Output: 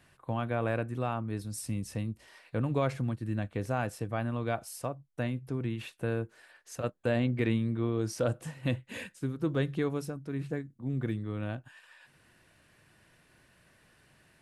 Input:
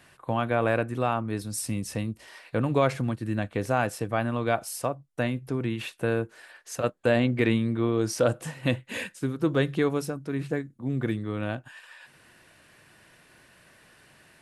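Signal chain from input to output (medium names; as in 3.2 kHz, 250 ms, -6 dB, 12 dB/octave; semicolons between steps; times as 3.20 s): bass shelf 180 Hz +8 dB; trim -8 dB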